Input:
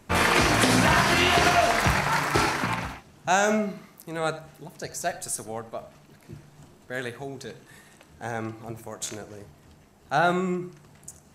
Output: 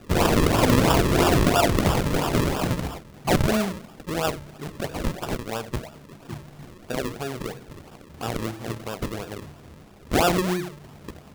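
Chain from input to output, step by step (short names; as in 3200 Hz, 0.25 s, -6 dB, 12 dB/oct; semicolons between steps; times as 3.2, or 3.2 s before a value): in parallel at +3 dB: compressor, threshold -36 dBFS, peak gain reduction 18.5 dB; on the sum: decimation with a swept rate 41×, swing 100% 3 Hz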